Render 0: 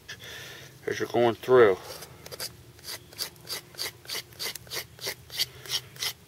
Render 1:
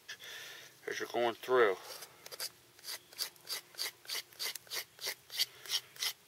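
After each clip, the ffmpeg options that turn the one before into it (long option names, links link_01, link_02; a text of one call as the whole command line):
ffmpeg -i in.wav -af "highpass=frequency=720:poles=1,volume=-5dB" out.wav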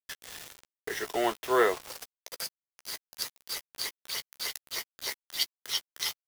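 ffmpeg -i in.wav -filter_complex "[0:a]adynamicequalizer=threshold=0.00282:dfrequency=1000:dqfactor=2.5:tfrequency=1000:tqfactor=2.5:attack=5:release=100:ratio=0.375:range=2.5:mode=boostabove:tftype=bell,acrusher=bits=6:mix=0:aa=0.000001,asplit=2[link_01][link_02];[link_02]adelay=14,volume=-12dB[link_03];[link_01][link_03]amix=inputs=2:normalize=0,volume=3.5dB" out.wav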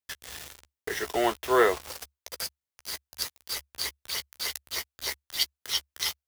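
ffmpeg -i in.wav -af "equalizer=frequency=70:width_type=o:width=0.52:gain=14,volume=2.5dB" out.wav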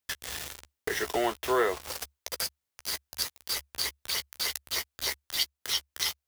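ffmpeg -i in.wav -af "acompressor=threshold=-36dB:ratio=2,volume=5.5dB" out.wav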